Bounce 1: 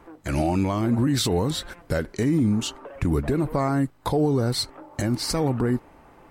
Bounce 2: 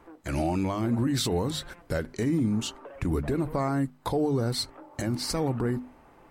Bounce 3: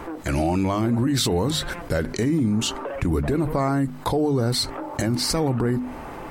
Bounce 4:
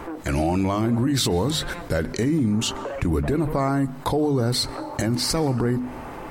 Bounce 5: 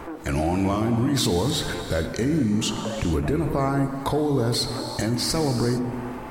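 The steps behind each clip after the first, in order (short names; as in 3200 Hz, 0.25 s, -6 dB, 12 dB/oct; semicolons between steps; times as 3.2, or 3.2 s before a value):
notches 50/100/150/200/250 Hz; gain -4 dB
fast leveller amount 50%; gain +3.5 dB
reverb RT60 1.3 s, pre-delay 0.117 s, DRR 22 dB
non-linear reverb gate 0.48 s flat, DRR 6.5 dB; gain -1.5 dB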